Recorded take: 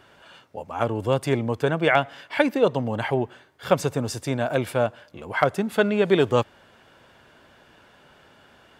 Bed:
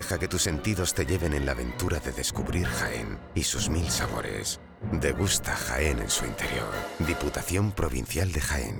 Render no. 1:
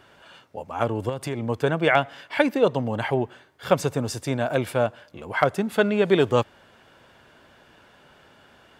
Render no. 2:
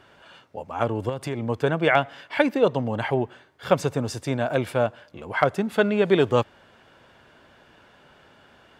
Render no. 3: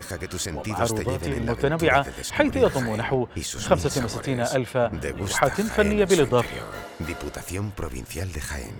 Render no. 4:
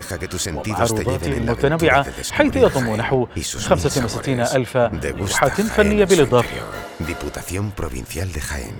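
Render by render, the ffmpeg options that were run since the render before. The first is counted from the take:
-filter_complex "[0:a]asettb=1/sr,asplit=3[s0][s1][s2];[s0]atrim=end=1.094[s3];[s1]atrim=start=1.09:end=1.49,asetpts=PTS-STARTPTS,afade=t=in:d=0.004:c=qsin,afade=t=out:st=0.396:d=0.004:c=qsin,acompressor=threshold=0.0631:ratio=6:attack=3.2:release=140:knee=1:detection=peak[s4];[s2]atrim=start=1.486[s5];[s3][s4]acrossfade=d=0.004:c1=hsin:c2=qsin[s6];[s6][s5]acrossfade=d=0.004:c1=qsin:c2=hsin"
-af "highshelf=f=8100:g=-7"
-filter_complex "[1:a]volume=0.668[s0];[0:a][s0]amix=inputs=2:normalize=0"
-af "volume=1.88,alimiter=limit=0.891:level=0:latency=1"

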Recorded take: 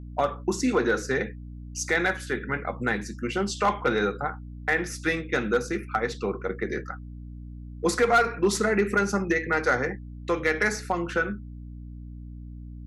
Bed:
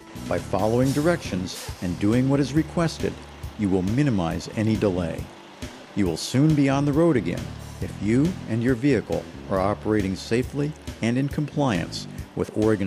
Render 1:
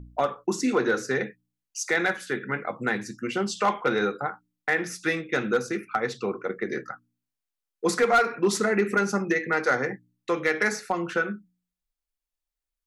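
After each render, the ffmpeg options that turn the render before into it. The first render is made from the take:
-af "bandreject=f=60:t=h:w=4,bandreject=f=120:t=h:w=4,bandreject=f=180:t=h:w=4,bandreject=f=240:t=h:w=4,bandreject=f=300:t=h:w=4"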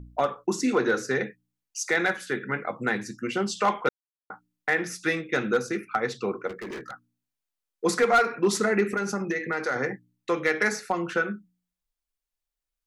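-filter_complex "[0:a]asplit=3[s0][s1][s2];[s0]afade=t=out:st=6.47:d=0.02[s3];[s1]asoftclip=type=hard:threshold=0.0211,afade=t=in:st=6.47:d=0.02,afade=t=out:st=6.91:d=0.02[s4];[s2]afade=t=in:st=6.91:d=0.02[s5];[s3][s4][s5]amix=inputs=3:normalize=0,asettb=1/sr,asplit=3[s6][s7][s8];[s6]atrim=end=8.874[s9];[s7]atrim=start=8.87:end=9.76,asetpts=PTS-STARTPTS,afade=t=in:d=0.004:c=qsin,afade=t=out:st=0.886:d=0.004:c=qsin,acompressor=threshold=0.0562:ratio=2.5:attack=3.2:release=140:knee=1:detection=peak[s10];[s8]atrim=start=9.756[s11];[s9][s10]acrossfade=d=0.004:c1=hsin:c2=qsin[s12];[s12][s11]acrossfade=d=0.004:c1=qsin:c2=hsin,asplit=3[s13][s14][s15];[s13]atrim=end=3.89,asetpts=PTS-STARTPTS,afade=t=out:st=3.886:d=0.004:c=hsin[s16];[s14]atrim=start=3.89:end=4.3,asetpts=PTS-STARTPTS,volume=0[s17];[s15]atrim=start=4.3,asetpts=PTS-STARTPTS,afade=t=in:d=0.004:c=hsin[s18];[s16][s17][s18]concat=n=3:v=0:a=1"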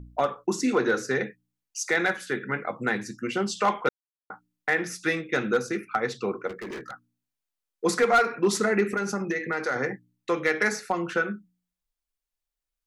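-af anull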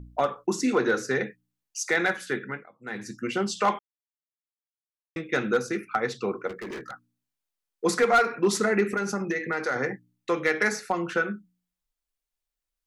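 -filter_complex "[0:a]asplit=5[s0][s1][s2][s3][s4];[s0]atrim=end=2.69,asetpts=PTS-STARTPTS,afade=t=out:st=2.37:d=0.32:silence=0.0668344[s5];[s1]atrim=start=2.69:end=2.81,asetpts=PTS-STARTPTS,volume=0.0668[s6];[s2]atrim=start=2.81:end=3.79,asetpts=PTS-STARTPTS,afade=t=in:d=0.32:silence=0.0668344,afade=t=out:st=0.976:d=0.004:c=hsin[s7];[s3]atrim=start=3.79:end=5.16,asetpts=PTS-STARTPTS,volume=0[s8];[s4]atrim=start=5.16,asetpts=PTS-STARTPTS,afade=t=in:d=0.004:c=hsin[s9];[s5][s6][s7][s8][s9]concat=n=5:v=0:a=1"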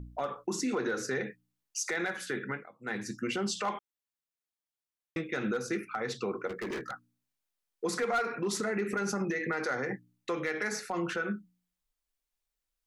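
-af "acompressor=threshold=0.0631:ratio=6,alimiter=limit=0.0668:level=0:latency=1:release=63"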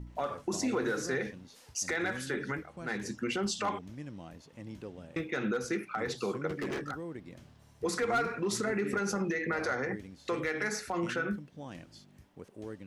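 -filter_complex "[1:a]volume=0.075[s0];[0:a][s0]amix=inputs=2:normalize=0"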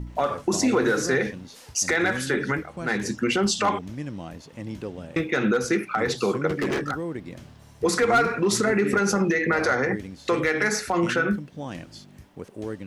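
-af "volume=3.16"

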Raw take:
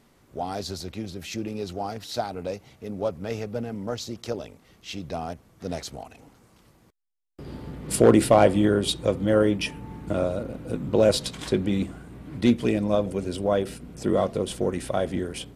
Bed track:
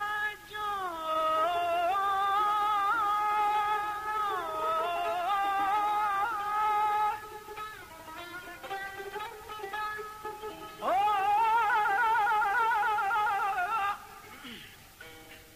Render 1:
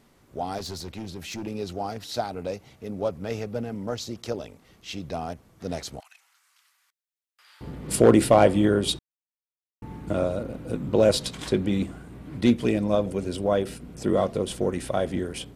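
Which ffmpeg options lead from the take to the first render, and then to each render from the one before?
-filter_complex "[0:a]asettb=1/sr,asplit=3[s0][s1][s2];[s0]atrim=end=0.584[s3];[s1]atrim=start=0.58:end=1.47,asetpts=PTS-STARTPTS,afade=t=in:d=0.004:c=qsin,afade=t=out:st=0.886:d=0.004:c=qsin,volume=31.6,asoftclip=hard,volume=0.0316[s4];[s2]atrim=start=1.466[s5];[s3][s4]acrossfade=d=0.004:c1=hsin:c2=qsin[s6];[s6][s5]acrossfade=d=0.004:c1=qsin:c2=hsin,asettb=1/sr,asplit=3[s7][s8][s9];[s7]atrim=end=6.004[s10];[s8]atrim=start=6:end=7.61,asetpts=PTS-STARTPTS,afade=t=in:d=0.004:c=qsin,afade=t=out:st=1.606:d=0.004:c=qsin,highpass=f=1300:w=0.5412,highpass=f=1300:w=1.3066[s11];[s9]atrim=start=7.606[s12];[s10][s11]acrossfade=d=0.004:c1=hsin:c2=qsin[s13];[s13][s12]acrossfade=d=0.004:c1=qsin:c2=hsin,asplit=3[s14][s15][s16];[s14]atrim=end=8.99,asetpts=PTS-STARTPTS,afade=t=out:st=8.986:d=0.004:c=hsin[s17];[s15]atrim=start=8.99:end=9.82,asetpts=PTS-STARTPTS,volume=0[s18];[s16]atrim=start=9.82,asetpts=PTS-STARTPTS,afade=t=in:d=0.004:c=hsin[s19];[s17][s18][s19]concat=n=3:v=0:a=1"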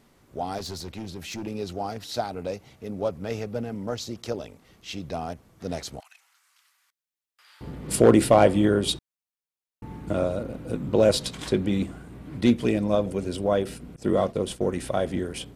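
-filter_complex "[0:a]asettb=1/sr,asplit=3[s0][s1][s2];[s0]atrim=end=13.964[s3];[s1]atrim=start=13.96:end=14.7,asetpts=PTS-STARTPTS,afade=t=in:d=0.004:c=qsin,afade=t=out:st=0.736:d=0.004:c=qsin,agate=range=0.0224:threshold=0.0224:ratio=3:release=100:detection=peak[s4];[s2]atrim=start=14.696[s5];[s3][s4]acrossfade=d=0.004:c1=hsin:c2=qsin[s6];[s6][s5]acrossfade=d=0.004:c1=qsin:c2=hsin"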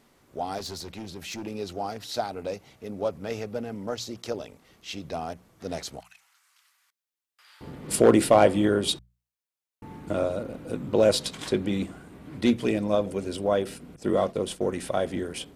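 -af "lowshelf=f=210:g=-5.5,bandreject=f=60:t=h:w=6,bandreject=f=120:t=h:w=6,bandreject=f=180:t=h:w=6"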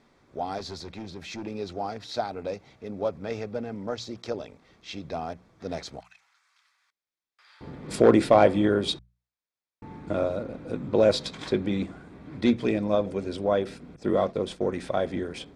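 -af "lowpass=4900,bandreject=f=2900:w=8"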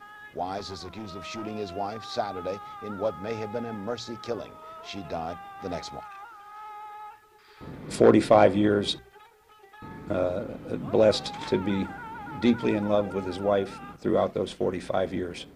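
-filter_complex "[1:a]volume=0.2[s0];[0:a][s0]amix=inputs=2:normalize=0"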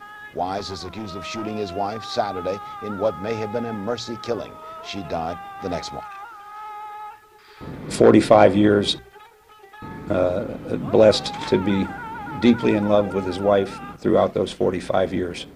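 -af "volume=2.11,alimiter=limit=0.794:level=0:latency=1"

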